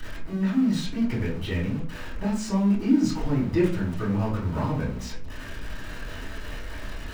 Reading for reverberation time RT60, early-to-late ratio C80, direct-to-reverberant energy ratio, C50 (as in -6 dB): 0.45 s, 11.0 dB, -10.0 dB, 6.5 dB